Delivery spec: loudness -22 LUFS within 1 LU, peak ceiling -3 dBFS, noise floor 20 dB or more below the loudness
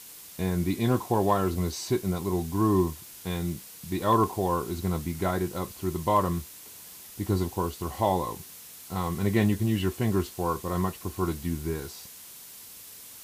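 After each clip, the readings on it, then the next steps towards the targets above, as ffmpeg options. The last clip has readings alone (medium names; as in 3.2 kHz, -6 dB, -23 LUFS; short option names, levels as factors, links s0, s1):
noise floor -46 dBFS; noise floor target -49 dBFS; loudness -28.5 LUFS; peak level -12.5 dBFS; loudness target -22.0 LUFS
-> -af "afftdn=nr=6:nf=-46"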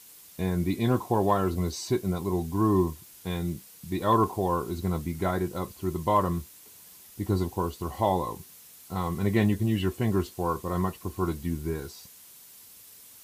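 noise floor -51 dBFS; loudness -28.5 LUFS; peak level -12.5 dBFS; loudness target -22.0 LUFS
-> -af "volume=2.11"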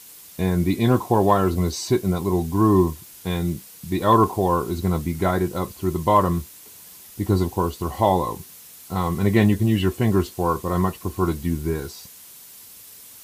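loudness -22.0 LUFS; peak level -6.0 dBFS; noise floor -45 dBFS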